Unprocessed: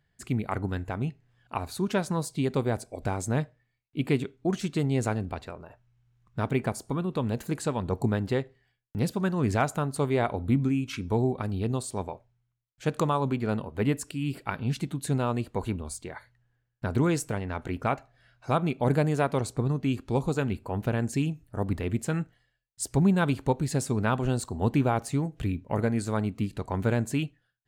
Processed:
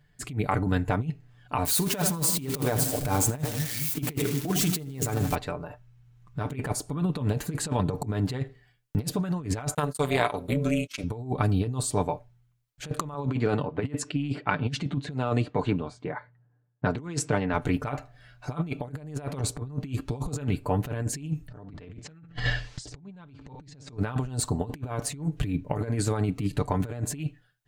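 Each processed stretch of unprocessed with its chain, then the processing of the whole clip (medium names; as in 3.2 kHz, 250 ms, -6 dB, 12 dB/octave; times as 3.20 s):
1.65–5.35 s: zero-crossing glitches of -27.5 dBFS + hum notches 60/120/180/240/300/360 Hz + two-band feedback delay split 300 Hz, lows 222 ms, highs 81 ms, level -13 dB
9.74–11.04 s: AM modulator 300 Hz, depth 60% + gate -39 dBFS, range -35 dB + tilt EQ +3 dB/octave
13.14–17.54 s: level-controlled noise filter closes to 900 Hz, open at -22.5 dBFS + band-pass 130–7300 Hz
21.48–23.97 s: low-pass 6 kHz 24 dB/octave + feedback delay 66 ms, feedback 26%, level -20.5 dB + level flattener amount 100%
whole clip: bass shelf 110 Hz +5 dB; comb 6.8 ms, depth 61%; compressor with a negative ratio -28 dBFS, ratio -0.5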